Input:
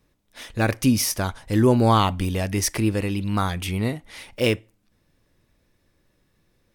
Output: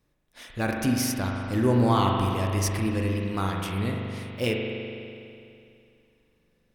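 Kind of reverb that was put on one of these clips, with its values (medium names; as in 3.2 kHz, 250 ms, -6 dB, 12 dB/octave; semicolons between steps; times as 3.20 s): spring tank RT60 2.6 s, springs 41 ms, chirp 60 ms, DRR 0 dB; trim -6.5 dB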